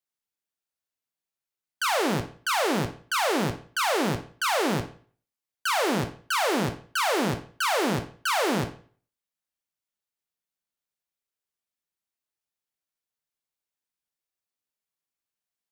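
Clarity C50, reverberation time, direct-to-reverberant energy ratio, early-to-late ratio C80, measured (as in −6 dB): 12.0 dB, 0.45 s, 6.5 dB, 16.5 dB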